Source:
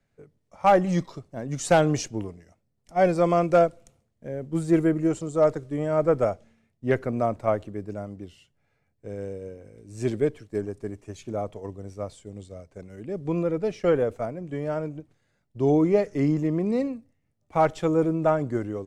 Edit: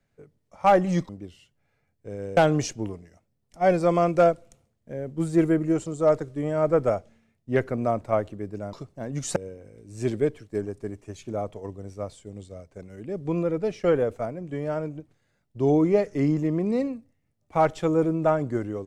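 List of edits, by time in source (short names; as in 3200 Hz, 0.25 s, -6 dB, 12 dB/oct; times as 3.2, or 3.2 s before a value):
1.09–1.72 swap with 8.08–9.36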